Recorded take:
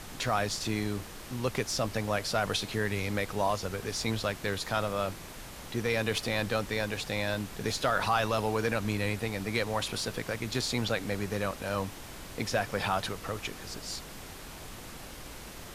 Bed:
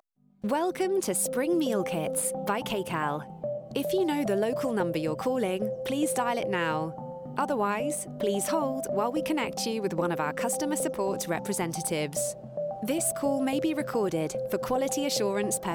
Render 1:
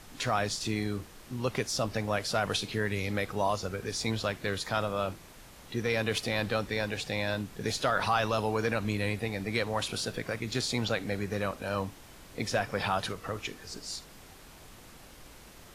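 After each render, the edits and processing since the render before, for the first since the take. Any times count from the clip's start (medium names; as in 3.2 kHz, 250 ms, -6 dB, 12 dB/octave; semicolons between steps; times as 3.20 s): noise print and reduce 7 dB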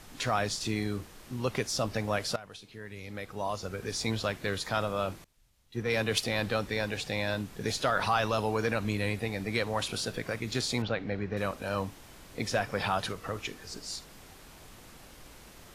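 2.36–3.91 s: fade in quadratic, from -17.5 dB; 5.24–6.24 s: three bands expanded up and down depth 100%; 10.82–11.37 s: distance through air 240 m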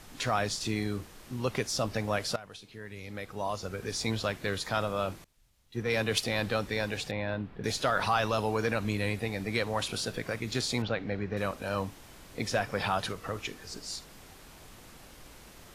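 7.11–7.64 s: distance through air 410 m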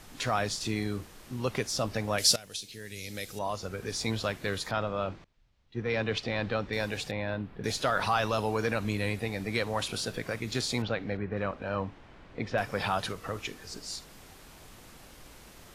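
2.18–3.39 s: FFT filter 540 Hz 0 dB, 1.1 kHz -9 dB, 1.7 kHz 0 dB, 5.9 kHz +15 dB; 4.71–6.73 s: distance through air 170 m; 11.17–12.58 s: low-pass 2.5 kHz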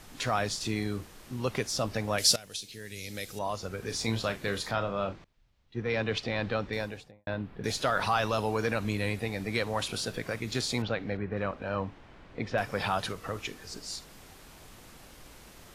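3.86–5.13 s: doubling 35 ms -10 dB; 6.64–7.27 s: studio fade out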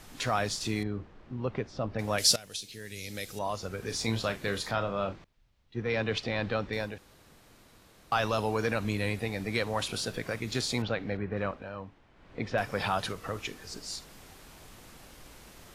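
0.83–1.99 s: tape spacing loss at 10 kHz 36 dB; 6.98–8.12 s: room tone; 11.47–12.39 s: dip -9 dB, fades 0.25 s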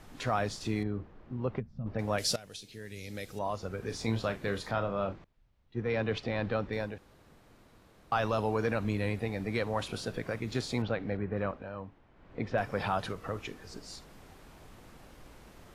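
1.60–1.86 s: time-frequency box 250–11000 Hz -20 dB; treble shelf 2.4 kHz -10 dB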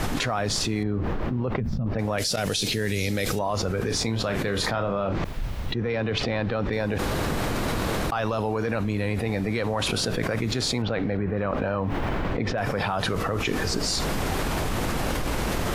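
level flattener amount 100%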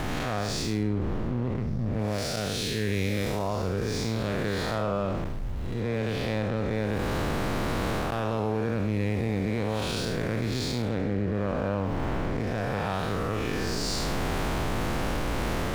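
spectral blur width 207 ms; hysteresis with a dead band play -35.5 dBFS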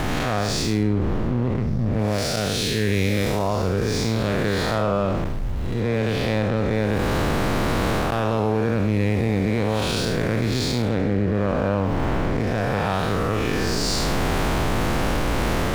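trim +6.5 dB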